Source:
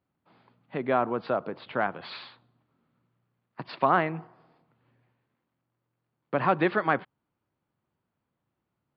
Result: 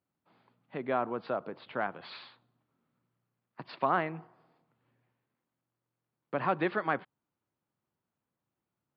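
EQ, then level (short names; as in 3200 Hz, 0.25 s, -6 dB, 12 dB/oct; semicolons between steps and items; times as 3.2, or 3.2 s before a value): low shelf 62 Hz -9.5 dB; -5.5 dB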